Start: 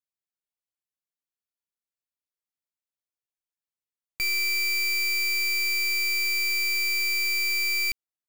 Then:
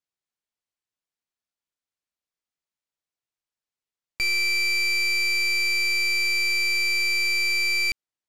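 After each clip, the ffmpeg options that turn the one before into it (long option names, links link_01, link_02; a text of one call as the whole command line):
ffmpeg -i in.wav -af "lowpass=7600,volume=3dB" out.wav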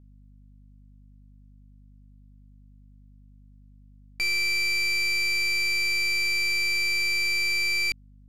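ffmpeg -i in.wav -af "aeval=exprs='val(0)+0.00355*(sin(2*PI*50*n/s)+sin(2*PI*2*50*n/s)/2+sin(2*PI*3*50*n/s)/3+sin(2*PI*4*50*n/s)/4+sin(2*PI*5*50*n/s)/5)':channel_layout=same,volume=-2dB" out.wav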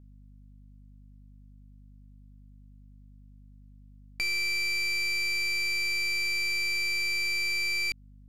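ffmpeg -i in.wav -af "acompressor=threshold=-30dB:ratio=2.5" out.wav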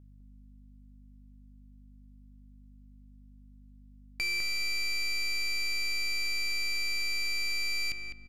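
ffmpeg -i in.wav -filter_complex "[0:a]asplit=2[link_01][link_02];[link_02]adelay=204,lowpass=frequency=2100:poles=1,volume=-5dB,asplit=2[link_03][link_04];[link_04]adelay=204,lowpass=frequency=2100:poles=1,volume=0.3,asplit=2[link_05][link_06];[link_06]adelay=204,lowpass=frequency=2100:poles=1,volume=0.3,asplit=2[link_07][link_08];[link_08]adelay=204,lowpass=frequency=2100:poles=1,volume=0.3[link_09];[link_01][link_03][link_05][link_07][link_09]amix=inputs=5:normalize=0,volume=-2dB" out.wav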